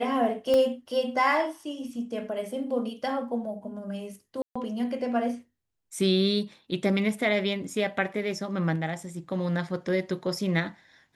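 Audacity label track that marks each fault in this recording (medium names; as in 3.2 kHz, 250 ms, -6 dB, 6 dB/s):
0.540000	0.540000	pop -14 dBFS
4.420000	4.550000	dropout 135 ms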